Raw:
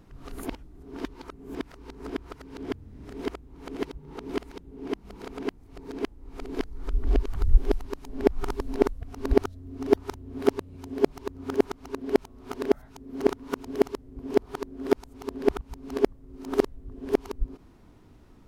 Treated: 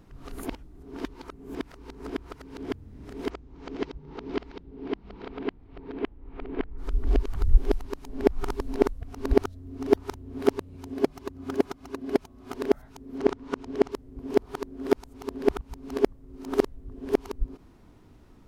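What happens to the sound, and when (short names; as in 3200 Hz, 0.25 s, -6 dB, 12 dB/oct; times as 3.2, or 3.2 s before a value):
3.29–6.77 LPF 6800 Hz -> 2700 Hz 24 dB/oct
10.94–12.53 notch comb 460 Hz
13.18–13.92 air absorption 66 m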